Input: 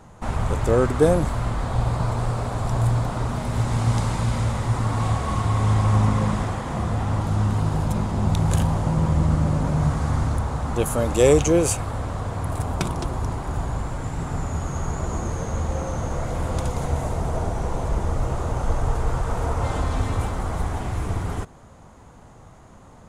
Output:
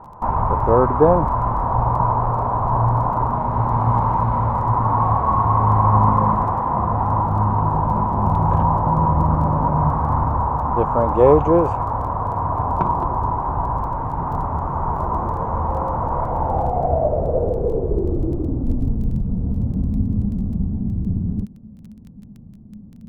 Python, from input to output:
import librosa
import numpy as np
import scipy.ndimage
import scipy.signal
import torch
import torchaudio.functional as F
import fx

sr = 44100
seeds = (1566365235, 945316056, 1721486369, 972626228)

y = fx.filter_sweep_lowpass(x, sr, from_hz=980.0, to_hz=210.0, start_s=16.23, end_s=19.14, q=6.6)
y = fx.dmg_crackle(y, sr, seeds[0], per_s=10.0, level_db=-36.0)
y = F.gain(torch.from_numpy(y), 1.0).numpy()